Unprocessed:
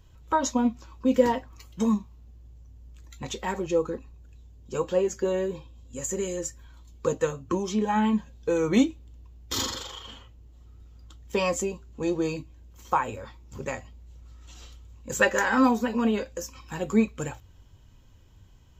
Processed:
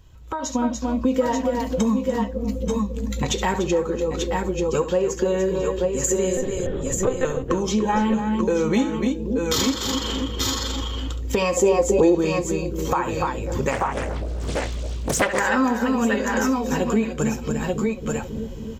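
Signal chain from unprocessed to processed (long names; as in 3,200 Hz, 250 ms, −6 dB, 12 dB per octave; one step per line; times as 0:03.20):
bucket-brigade delay 272 ms, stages 1,024, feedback 66%, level −14 dB
0:06.37–0:07.25: one-pitch LPC vocoder at 8 kHz 260 Hz
multi-tap delay 69/292/880/891 ms −12.5/−9.5/−13.5/−8.5 dB
downward compressor 4 to 1, threshold −36 dBFS, peak gain reduction 18.5 dB
0:11.57–0:12.15: flat-topped bell 560 Hz +9.5 dB
automatic gain control gain up to 11.5 dB
boost into a limiter +11 dB
0:13.71–0:15.40: highs frequency-modulated by the lows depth 0.96 ms
level −7 dB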